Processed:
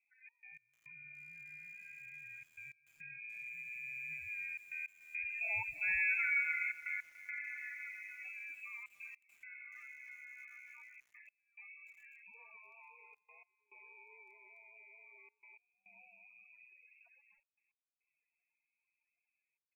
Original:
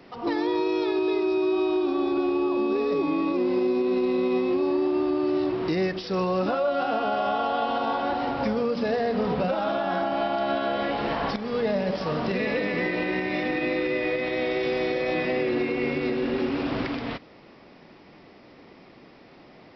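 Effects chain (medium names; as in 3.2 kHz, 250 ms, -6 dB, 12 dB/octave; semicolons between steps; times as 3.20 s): Doppler pass-by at 6.04 s, 17 m/s, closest 7.5 m; bass shelf 400 Hz -3.5 dB; frequency inversion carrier 2.8 kHz; loudest bins only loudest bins 16; delay 383 ms -18 dB; trance gate "xx.x..xxxxxxxxx" 105 bpm -24 dB; bit-crushed delay 290 ms, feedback 35%, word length 8-bit, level -15 dB; trim -6.5 dB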